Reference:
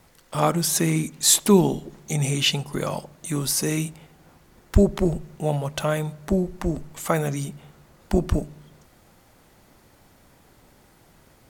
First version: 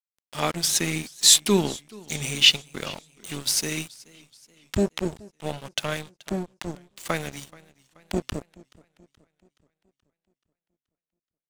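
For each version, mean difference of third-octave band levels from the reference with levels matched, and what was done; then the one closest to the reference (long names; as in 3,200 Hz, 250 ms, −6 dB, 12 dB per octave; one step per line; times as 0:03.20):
6.0 dB: meter weighting curve D
dead-zone distortion −29 dBFS
low-shelf EQ 320 Hz +4.5 dB
feedback echo with a swinging delay time 427 ms, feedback 49%, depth 93 cents, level −23 dB
level −4.5 dB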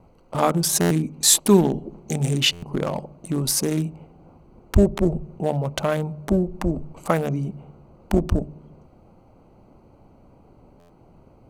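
4.5 dB: adaptive Wiener filter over 25 samples
in parallel at −1 dB: downward compressor, threshold −29 dBFS, peak gain reduction 18 dB
on the sum: mains-hum notches 50/100/150 Hz
buffer that repeats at 0:00.80/0:02.52/0:10.79, samples 512, times 8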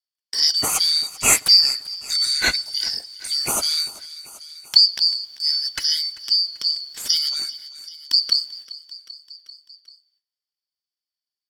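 15.0 dB: band-splitting scrambler in four parts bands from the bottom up 4321
noise gate −44 dBFS, range −48 dB
repeating echo 390 ms, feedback 50%, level −20 dB
one half of a high-frequency compander encoder only
level +2 dB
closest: second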